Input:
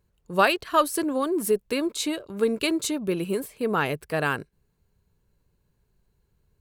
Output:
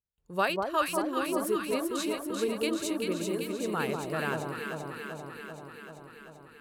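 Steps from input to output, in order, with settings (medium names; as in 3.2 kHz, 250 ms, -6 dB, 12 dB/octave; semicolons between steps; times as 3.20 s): gate with hold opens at -59 dBFS; on a send: echo whose repeats swap between lows and highs 194 ms, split 1.1 kHz, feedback 83%, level -2.5 dB; on the sum: trim -8 dB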